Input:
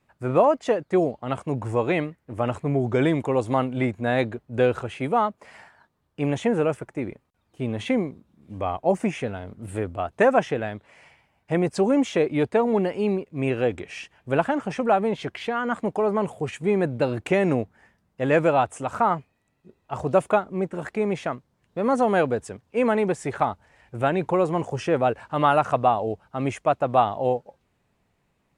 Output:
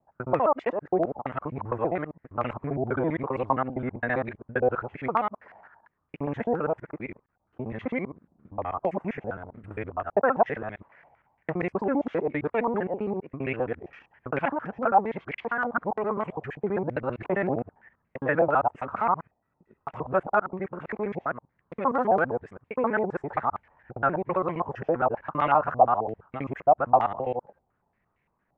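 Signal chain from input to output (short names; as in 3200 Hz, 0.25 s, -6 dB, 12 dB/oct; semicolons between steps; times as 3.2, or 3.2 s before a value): local time reversal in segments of 66 ms; stepped low-pass 8.7 Hz 770–2200 Hz; gain -7 dB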